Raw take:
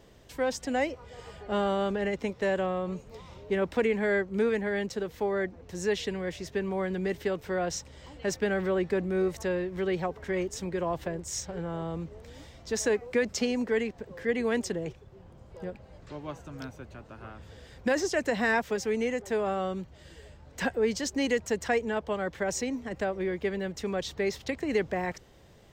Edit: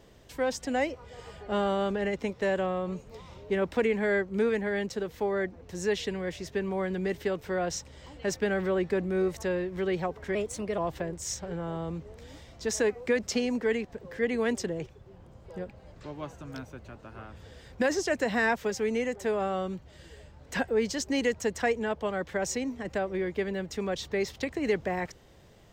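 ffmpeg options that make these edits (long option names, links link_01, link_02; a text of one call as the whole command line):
ffmpeg -i in.wav -filter_complex "[0:a]asplit=3[link_01][link_02][link_03];[link_01]atrim=end=10.354[link_04];[link_02]atrim=start=10.35:end=10.84,asetpts=PTS-STARTPTS,asetrate=50274,aresample=44100,atrim=end_sample=18955,asetpts=PTS-STARTPTS[link_05];[link_03]atrim=start=10.836[link_06];[link_04][link_05]acrossfade=duration=0.004:curve1=hsin:curve2=hsin[link_07];[link_07][link_06]acrossfade=duration=0.004:curve1=hsin:curve2=hsin" out.wav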